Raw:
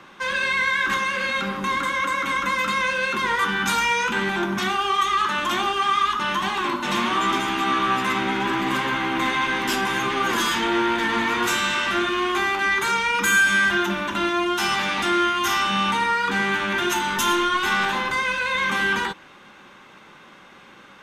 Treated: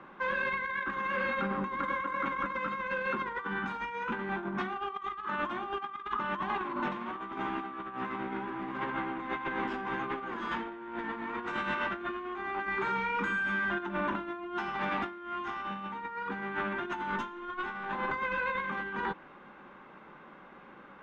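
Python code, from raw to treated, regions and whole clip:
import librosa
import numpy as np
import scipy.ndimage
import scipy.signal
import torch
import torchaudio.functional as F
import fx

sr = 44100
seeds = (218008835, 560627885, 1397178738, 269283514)

y = fx.chain(x, sr, fx.comb_fb(f0_hz=64.0, decay_s=0.58, harmonics='all', damping=0.0, mix_pct=70),
    fx.env_flatten(amount_pct=70), at=(12.67, 13.8))
y = scipy.signal.sosfilt(scipy.signal.butter(2, 1500.0, 'lowpass', fs=sr, output='sos'), y)
y = fx.peak_eq(y, sr, hz=100.0, db=-14.0, octaves=0.36)
y = fx.over_compress(y, sr, threshold_db=-28.0, ratio=-0.5)
y = F.gain(torch.from_numpy(y), -6.0).numpy()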